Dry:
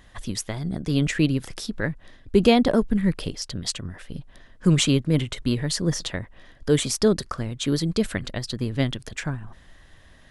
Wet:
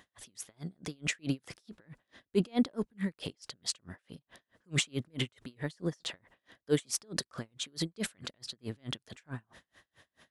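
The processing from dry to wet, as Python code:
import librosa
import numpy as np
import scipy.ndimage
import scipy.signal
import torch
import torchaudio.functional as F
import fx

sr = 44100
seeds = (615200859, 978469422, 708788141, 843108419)

y = scipy.signal.sosfilt(scipy.signal.butter(2, 79.0, 'highpass', fs=sr, output='sos'), x)
y = fx.low_shelf(y, sr, hz=160.0, db=-11.5)
y = fx.transient(y, sr, attack_db=-4, sustain_db=5)
y = y * 10.0 ** (-37 * (0.5 - 0.5 * np.cos(2.0 * np.pi * 4.6 * np.arange(len(y)) / sr)) / 20.0)
y = y * librosa.db_to_amplitude(-2.0)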